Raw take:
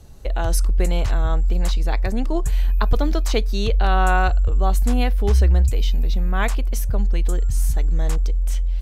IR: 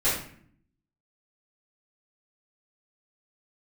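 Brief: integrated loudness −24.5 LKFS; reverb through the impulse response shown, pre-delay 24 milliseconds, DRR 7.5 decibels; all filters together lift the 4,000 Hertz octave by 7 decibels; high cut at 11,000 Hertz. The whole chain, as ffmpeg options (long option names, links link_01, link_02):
-filter_complex "[0:a]lowpass=11000,equalizer=frequency=4000:width_type=o:gain=8.5,asplit=2[link_01][link_02];[1:a]atrim=start_sample=2205,adelay=24[link_03];[link_02][link_03]afir=irnorm=-1:irlink=0,volume=-20dB[link_04];[link_01][link_04]amix=inputs=2:normalize=0,volume=-2.5dB"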